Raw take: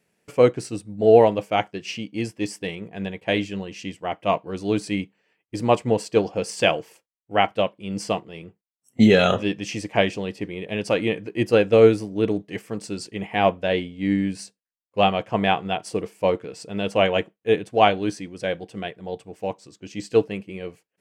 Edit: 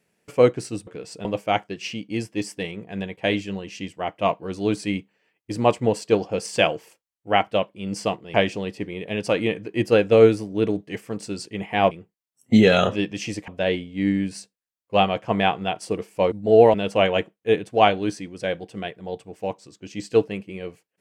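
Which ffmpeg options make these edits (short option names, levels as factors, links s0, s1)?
-filter_complex "[0:a]asplit=8[s0][s1][s2][s3][s4][s5][s6][s7];[s0]atrim=end=0.872[s8];[s1]atrim=start=16.358:end=16.742[s9];[s2]atrim=start=1.288:end=8.382[s10];[s3]atrim=start=9.948:end=13.522[s11];[s4]atrim=start=8.378:end=9.952[s12];[s5]atrim=start=13.518:end=16.362[s13];[s6]atrim=start=0.868:end=1.292[s14];[s7]atrim=start=16.738[s15];[s8][s9]acrossfade=d=0.004:c1=hsin:c2=hsin[s16];[s16][s10]acrossfade=d=0.004:c1=hsin:c2=hsin[s17];[s17][s11]acrossfade=d=0.004:c1=hsin:c2=hsin[s18];[s18][s12]acrossfade=d=0.004:c1=hsin:c2=hsin[s19];[s19][s13]acrossfade=d=0.004:c1=hsin:c2=hsin[s20];[s20][s14]acrossfade=d=0.004:c1=hsin:c2=hsin[s21];[s21][s15]acrossfade=d=0.004:c1=hsin:c2=hsin"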